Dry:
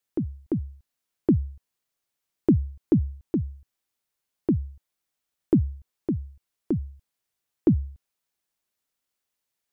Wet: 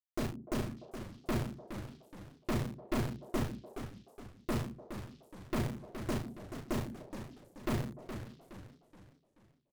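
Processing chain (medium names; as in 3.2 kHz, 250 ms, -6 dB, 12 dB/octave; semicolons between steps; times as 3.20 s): comb filter that takes the minimum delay 8.4 ms; band-stop 550 Hz, Q 12; bit crusher 6-bit; hum notches 60/120/180/240 Hz; valve stage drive 32 dB, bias 0.75; doubling 35 ms -4.5 dB; repeats whose band climbs or falls 148 ms, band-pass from 220 Hz, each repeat 1.4 oct, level -8.5 dB; modulated delay 424 ms, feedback 41%, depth 202 cents, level -9.5 dB; trim +1.5 dB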